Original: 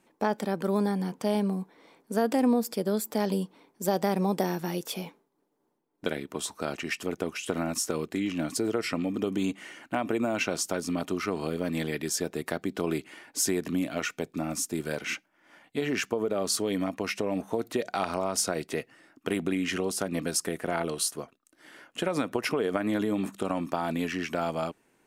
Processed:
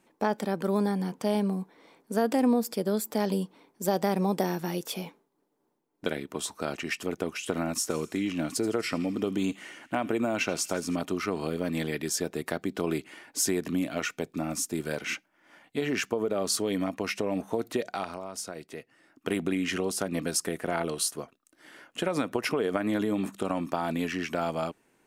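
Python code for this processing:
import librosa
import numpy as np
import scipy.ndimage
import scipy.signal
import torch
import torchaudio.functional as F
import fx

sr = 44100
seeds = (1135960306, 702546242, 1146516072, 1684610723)

y = fx.echo_wet_highpass(x, sr, ms=81, feedback_pct=61, hz=2000.0, wet_db=-17, at=(7.89, 10.95), fade=0.02)
y = fx.edit(y, sr, fx.fade_down_up(start_s=17.75, length_s=1.55, db=-9.5, fade_s=0.45), tone=tone)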